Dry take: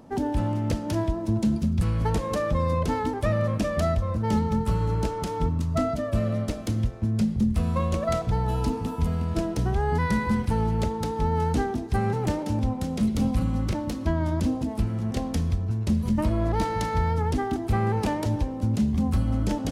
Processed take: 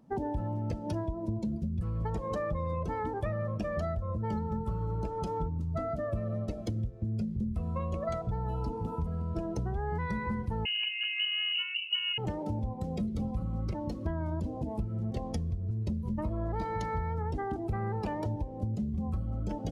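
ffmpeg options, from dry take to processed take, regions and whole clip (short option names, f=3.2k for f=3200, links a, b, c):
-filter_complex "[0:a]asettb=1/sr,asplit=3[a][b][c];[a]atrim=end=10.654[d];[b]atrim=start=10.65:end=12.18,asetpts=PTS-STARTPTS,afade=t=in:d=0.004:c=qsin,afade=t=out:st=1.526:d=0.004:c=qsin,asubboost=boost=4:cutoff=180,lowpass=f=2.6k:t=q:w=0.5098,lowpass=f=2.6k:t=q:w=0.6013,lowpass=f=2.6k:t=q:w=0.9,lowpass=f=2.6k:t=q:w=2.563,afreqshift=-3000,highpass=58[e];[c]atrim=start=12.176[f];[d][e]acrossfade=d=0.004:c1=hsin:c2=qsin[g];[g][f]acrossfade=d=0.004:c1=qsin:c2=hsin,afftdn=nr=16:nf=-36,equalizer=f=260:t=o:w=0.23:g=-10,acompressor=threshold=-30dB:ratio=6"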